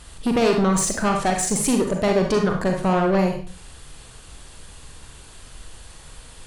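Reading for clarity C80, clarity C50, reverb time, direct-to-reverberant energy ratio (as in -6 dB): 10.5 dB, 5.0 dB, 0.40 s, 2.5 dB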